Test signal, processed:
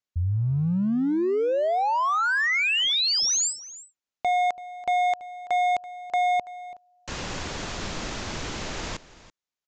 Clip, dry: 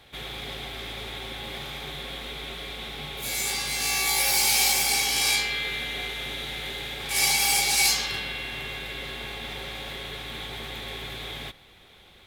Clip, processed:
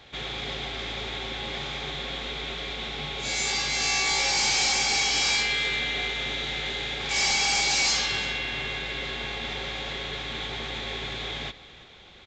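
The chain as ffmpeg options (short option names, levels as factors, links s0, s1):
-af "lowshelf=f=93:g=-2.5,aresample=16000,asoftclip=type=hard:threshold=0.0631,aresample=44100,aecho=1:1:333:0.126,volume=1.41"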